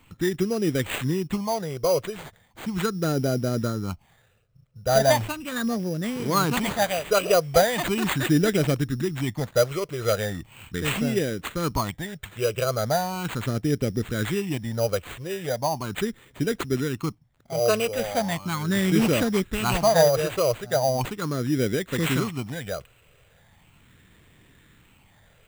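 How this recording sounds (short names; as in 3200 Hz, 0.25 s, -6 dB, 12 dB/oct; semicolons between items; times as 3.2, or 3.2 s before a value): phasing stages 8, 0.38 Hz, lowest notch 250–1000 Hz; aliases and images of a low sample rate 5400 Hz, jitter 0%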